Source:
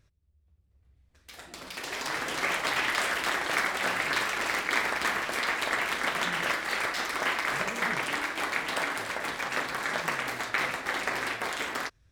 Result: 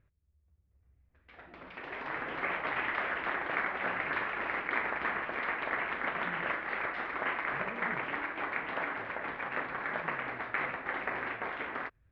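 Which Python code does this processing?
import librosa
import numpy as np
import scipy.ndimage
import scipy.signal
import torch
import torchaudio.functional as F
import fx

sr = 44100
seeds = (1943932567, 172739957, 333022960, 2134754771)

y = scipy.signal.sosfilt(scipy.signal.butter(4, 2400.0, 'lowpass', fs=sr, output='sos'), x)
y = y * librosa.db_to_amplitude(-4.0)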